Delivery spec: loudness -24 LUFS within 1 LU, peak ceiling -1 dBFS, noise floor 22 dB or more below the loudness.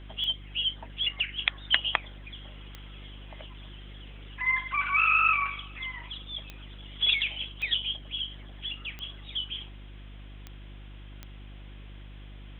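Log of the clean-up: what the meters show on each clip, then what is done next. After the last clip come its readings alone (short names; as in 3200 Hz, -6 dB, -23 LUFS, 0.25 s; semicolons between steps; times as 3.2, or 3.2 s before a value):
clicks 7; hum 50 Hz; harmonics up to 350 Hz; hum level -42 dBFS; loudness -28.0 LUFS; peak -2.5 dBFS; loudness target -24.0 LUFS
-> de-click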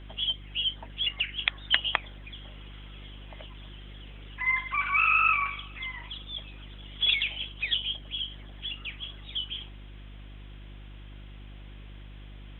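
clicks 0; hum 50 Hz; harmonics up to 350 Hz; hum level -42 dBFS
-> de-hum 50 Hz, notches 7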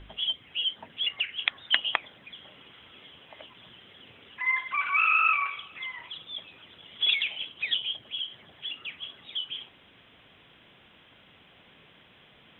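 hum none; loudness -28.0 LUFS; peak -2.5 dBFS; loudness target -24.0 LUFS
-> gain +4 dB; limiter -1 dBFS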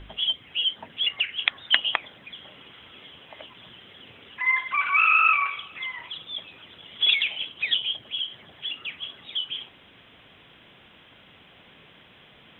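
loudness -24.0 LUFS; peak -1.0 dBFS; noise floor -53 dBFS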